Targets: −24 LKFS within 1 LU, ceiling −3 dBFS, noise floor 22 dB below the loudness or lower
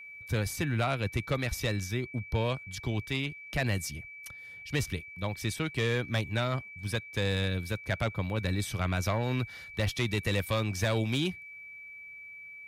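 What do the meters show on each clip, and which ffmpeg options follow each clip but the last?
interfering tone 2,300 Hz; level of the tone −44 dBFS; integrated loudness −32.0 LKFS; sample peak −19.5 dBFS; target loudness −24.0 LKFS
→ -af "bandreject=frequency=2300:width=30"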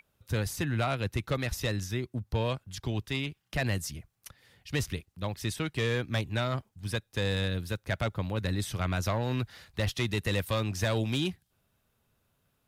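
interfering tone none found; integrated loudness −32.0 LKFS; sample peak −19.0 dBFS; target loudness −24.0 LKFS
→ -af "volume=8dB"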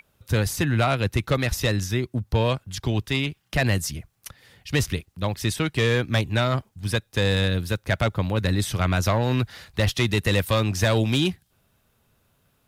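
integrated loudness −24.0 LKFS; sample peak −11.0 dBFS; background noise floor −68 dBFS

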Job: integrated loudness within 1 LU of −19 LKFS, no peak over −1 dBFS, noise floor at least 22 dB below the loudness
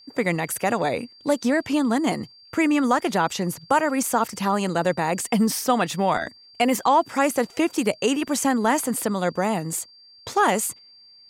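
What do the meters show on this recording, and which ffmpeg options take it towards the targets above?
interfering tone 4,700 Hz; level of the tone −48 dBFS; integrated loudness −23.0 LKFS; sample peak −7.5 dBFS; target loudness −19.0 LKFS
→ -af "bandreject=frequency=4700:width=30"
-af "volume=4dB"

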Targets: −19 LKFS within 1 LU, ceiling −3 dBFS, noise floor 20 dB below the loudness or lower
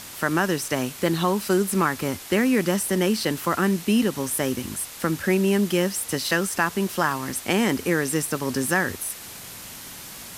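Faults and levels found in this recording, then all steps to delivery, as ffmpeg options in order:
background noise floor −40 dBFS; target noise floor −44 dBFS; integrated loudness −23.5 LKFS; sample peak −6.5 dBFS; target loudness −19.0 LKFS
→ -af "afftdn=noise_reduction=6:noise_floor=-40"
-af "volume=4.5dB,alimiter=limit=-3dB:level=0:latency=1"

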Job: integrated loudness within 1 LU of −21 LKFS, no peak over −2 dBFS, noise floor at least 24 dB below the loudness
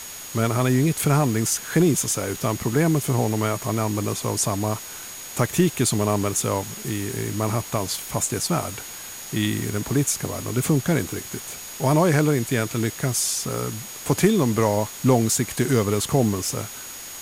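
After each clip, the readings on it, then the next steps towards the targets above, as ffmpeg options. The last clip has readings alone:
interfering tone 6,700 Hz; level of the tone −39 dBFS; background noise floor −37 dBFS; target noise floor −47 dBFS; integrated loudness −23.0 LKFS; sample peak −5.0 dBFS; target loudness −21.0 LKFS
→ -af "bandreject=frequency=6700:width=30"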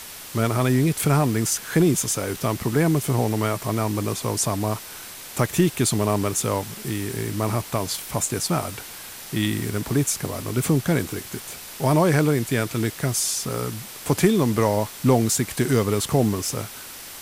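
interfering tone none found; background noise floor −39 dBFS; target noise floor −47 dBFS
→ -af "afftdn=noise_reduction=8:noise_floor=-39"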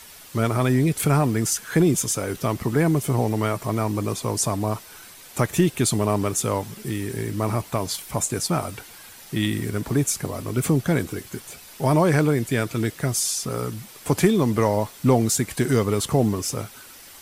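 background noise floor −45 dBFS; target noise floor −47 dBFS
→ -af "afftdn=noise_reduction=6:noise_floor=-45"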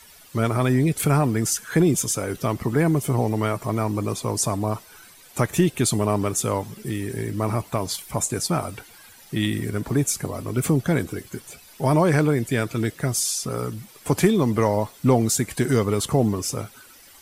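background noise floor −49 dBFS; integrated loudness −23.0 LKFS; sample peak −5.5 dBFS; target loudness −21.0 LKFS
→ -af "volume=2dB"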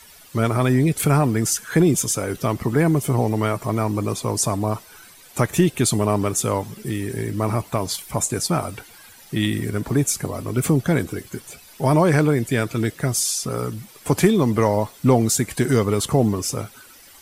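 integrated loudness −21.0 LKFS; sample peak −3.5 dBFS; background noise floor −47 dBFS

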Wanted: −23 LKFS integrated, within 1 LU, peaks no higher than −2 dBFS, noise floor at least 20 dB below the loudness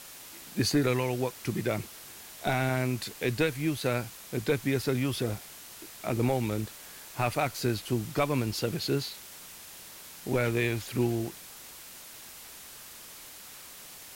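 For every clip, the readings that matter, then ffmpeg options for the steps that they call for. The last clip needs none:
background noise floor −47 dBFS; target noise floor −51 dBFS; integrated loudness −30.5 LKFS; sample peak −15.5 dBFS; target loudness −23.0 LKFS
→ -af "afftdn=noise_reduction=6:noise_floor=-47"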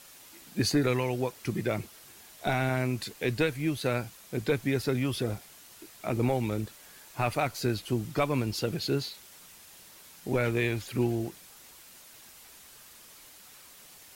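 background noise floor −53 dBFS; integrated loudness −30.5 LKFS; sample peak −15.5 dBFS; target loudness −23.0 LKFS
→ -af "volume=7.5dB"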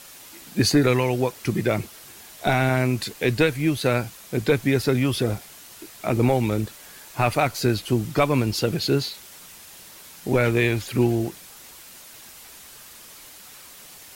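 integrated loudness −23.0 LKFS; sample peak −8.0 dBFS; background noise floor −45 dBFS

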